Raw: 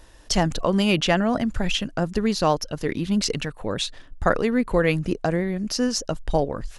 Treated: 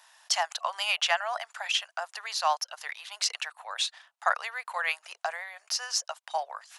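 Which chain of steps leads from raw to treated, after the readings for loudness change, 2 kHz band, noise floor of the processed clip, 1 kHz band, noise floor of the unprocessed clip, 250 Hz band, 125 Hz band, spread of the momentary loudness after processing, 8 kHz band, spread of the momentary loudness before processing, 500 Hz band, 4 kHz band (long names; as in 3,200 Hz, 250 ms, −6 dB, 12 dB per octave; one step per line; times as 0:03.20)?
−6.5 dB, −1.5 dB, −74 dBFS, −2.5 dB, −46 dBFS, below −40 dB, below −40 dB, 9 LU, −1.5 dB, 7 LU, −15.0 dB, −1.5 dB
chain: Butterworth high-pass 720 Hz 48 dB per octave
level −1.5 dB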